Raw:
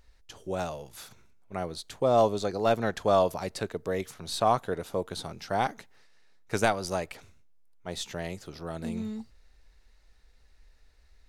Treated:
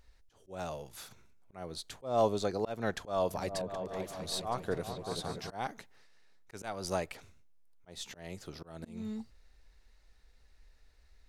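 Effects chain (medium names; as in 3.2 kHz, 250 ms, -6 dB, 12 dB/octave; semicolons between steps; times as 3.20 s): slow attack 263 ms; 2.94–5.50 s: delay with an opening low-pass 193 ms, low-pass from 200 Hz, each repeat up 2 oct, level -3 dB; trim -2.5 dB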